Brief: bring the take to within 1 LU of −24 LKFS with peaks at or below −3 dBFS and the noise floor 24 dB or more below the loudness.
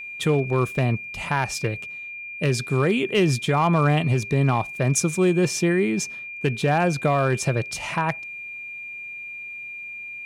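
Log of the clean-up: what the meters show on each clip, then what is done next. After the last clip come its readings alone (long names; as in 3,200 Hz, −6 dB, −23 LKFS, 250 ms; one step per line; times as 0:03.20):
share of clipped samples 0.3%; peaks flattened at −12.5 dBFS; interfering tone 2,400 Hz; level of the tone −33 dBFS; integrated loudness −23.5 LKFS; sample peak −12.5 dBFS; target loudness −24.0 LKFS
→ clipped peaks rebuilt −12.5 dBFS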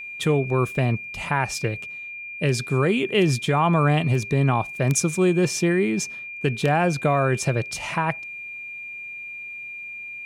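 share of clipped samples 0.0%; interfering tone 2,400 Hz; level of the tone −33 dBFS
→ notch filter 2,400 Hz, Q 30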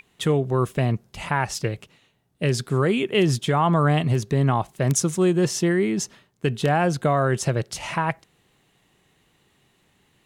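interfering tone none found; integrated loudness −23.0 LKFS; sample peak −4.0 dBFS; target loudness −24.0 LKFS
→ level −1 dB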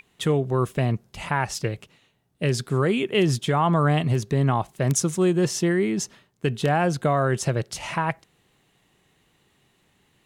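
integrated loudness −24.0 LKFS; sample peak −5.0 dBFS; background noise floor −66 dBFS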